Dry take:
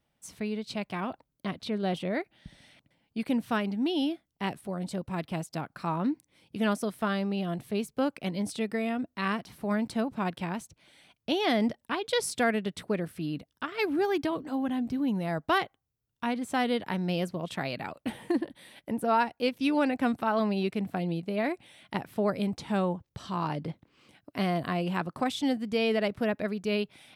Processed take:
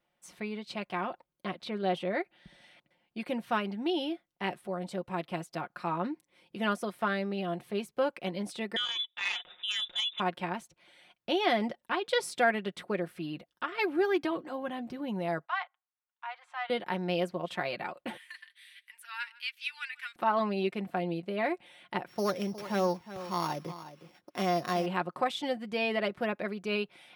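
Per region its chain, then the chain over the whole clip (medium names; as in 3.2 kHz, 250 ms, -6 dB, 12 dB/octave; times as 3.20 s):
8.76–10.20 s: frequency inversion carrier 3.7 kHz + transformer saturation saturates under 2.7 kHz
15.45–16.70 s: steep high-pass 840 Hz + tape spacing loss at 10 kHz 25 dB + transient shaper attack -5 dB, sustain +1 dB
18.17–20.16 s: inverse Chebyshev high-pass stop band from 660 Hz, stop band 50 dB + delay 154 ms -21.5 dB
22.08–24.86 s: sorted samples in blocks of 8 samples + delay 362 ms -13.5 dB
whole clip: tone controls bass -12 dB, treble -8 dB; comb 5.6 ms, depth 56%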